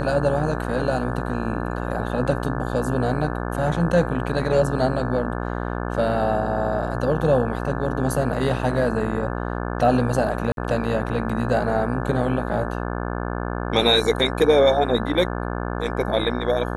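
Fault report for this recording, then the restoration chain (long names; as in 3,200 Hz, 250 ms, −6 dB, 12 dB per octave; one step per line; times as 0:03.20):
mains buzz 60 Hz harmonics 29 −27 dBFS
0:10.52–0:10.57: drop-out 52 ms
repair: hum removal 60 Hz, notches 29
repair the gap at 0:10.52, 52 ms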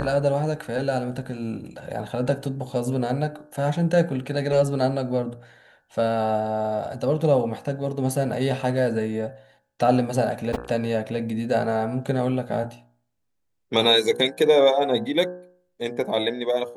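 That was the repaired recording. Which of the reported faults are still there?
none of them is left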